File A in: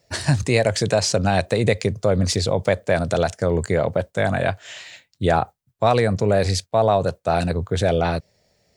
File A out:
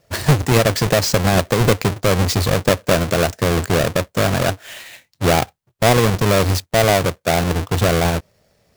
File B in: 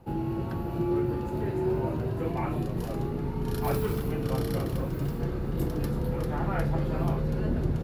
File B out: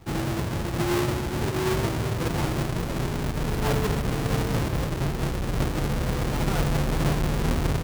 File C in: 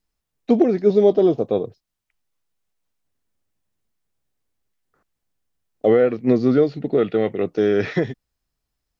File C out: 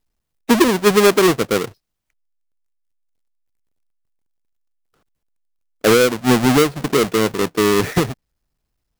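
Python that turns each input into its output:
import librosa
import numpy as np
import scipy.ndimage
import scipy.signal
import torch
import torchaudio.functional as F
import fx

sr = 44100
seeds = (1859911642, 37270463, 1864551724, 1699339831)

y = fx.halfwave_hold(x, sr)
y = F.gain(torch.from_numpy(y), -1.0).numpy()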